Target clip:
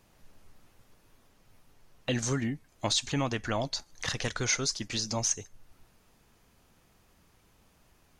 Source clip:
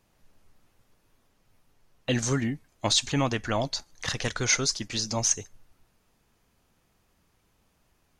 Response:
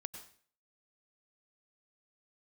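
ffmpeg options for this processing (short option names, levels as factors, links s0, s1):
-af "acompressor=threshold=0.00501:ratio=1.5,volume=1.68"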